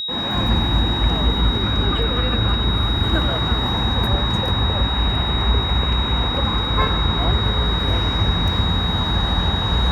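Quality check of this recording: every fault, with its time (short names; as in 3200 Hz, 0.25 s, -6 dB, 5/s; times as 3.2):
tone 3800 Hz -23 dBFS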